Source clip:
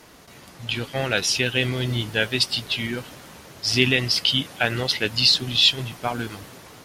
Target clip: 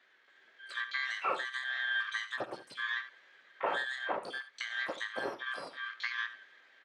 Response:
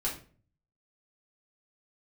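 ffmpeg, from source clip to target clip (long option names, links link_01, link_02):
-filter_complex "[0:a]afftfilt=real='real(if(lt(b,272),68*(eq(floor(b/68),0)*3+eq(floor(b/68),1)*0+eq(floor(b/68),2)*1+eq(floor(b/68),3)*2)+mod(b,68),b),0)':imag='imag(if(lt(b,272),68*(eq(floor(b/68),0)*3+eq(floor(b/68),1)*0+eq(floor(b/68),2)*1+eq(floor(b/68),3)*2)+mod(b,68),b),0)':win_size=2048:overlap=0.75,afwtdn=0.0398,acompressor=threshold=-32dB:ratio=12,highpass=320,equalizer=frequency=380:width_type=q:width=4:gain=4,equalizer=frequency=550:width_type=q:width=4:gain=4,equalizer=frequency=1300:width_type=q:width=4:gain=8,equalizer=frequency=2600:width_type=q:width=4:gain=-6,lowpass=frequency=2700:width=0.5412,lowpass=frequency=2700:width=1.3066,asplit=2[link_01][link_02];[link_02]aecho=0:1:53|77:0.141|0.224[link_03];[link_01][link_03]amix=inputs=2:normalize=0,asplit=2[link_04][link_05];[link_05]asetrate=88200,aresample=44100,atempo=0.5,volume=-10dB[link_06];[link_04][link_06]amix=inputs=2:normalize=0"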